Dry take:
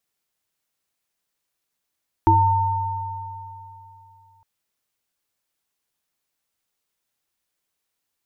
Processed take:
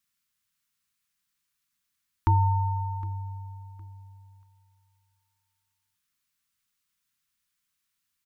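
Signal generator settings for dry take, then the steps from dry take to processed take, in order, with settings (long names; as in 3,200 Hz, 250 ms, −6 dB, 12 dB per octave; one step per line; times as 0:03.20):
inharmonic partials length 2.16 s, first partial 97.2 Hz, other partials 328/906 Hz, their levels 2.5/4 dB, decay 2.95 s, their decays 0.27/3.05 s, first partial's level −16.5 dB
flat-topped bell 520 Hz −15.5 dB
repeating echo 762 ms, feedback 30%, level −19.5 dB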